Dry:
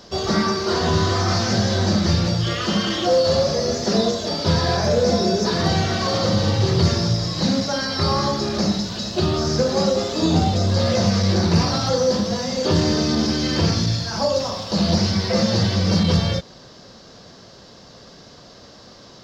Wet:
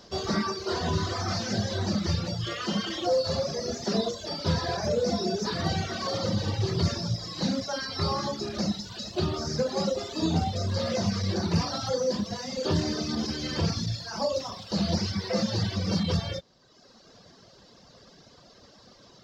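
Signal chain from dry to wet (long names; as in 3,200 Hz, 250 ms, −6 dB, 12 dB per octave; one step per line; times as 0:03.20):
reverb reduction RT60 1.2 s
level −6.5 dB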